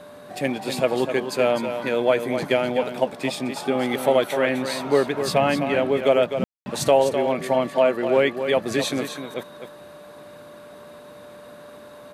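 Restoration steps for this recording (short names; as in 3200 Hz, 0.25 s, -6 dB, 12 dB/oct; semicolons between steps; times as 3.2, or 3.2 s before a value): notch 590 Hz, Q 30; room tone fill 6.44–6.66; inverse comb 0.254 s -8.5 dB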